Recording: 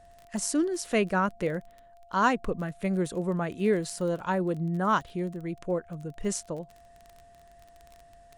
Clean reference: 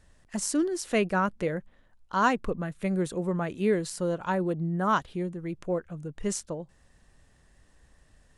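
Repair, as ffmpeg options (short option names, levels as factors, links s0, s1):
-af "adeclick=t=4,bandreject=f=690:w=30"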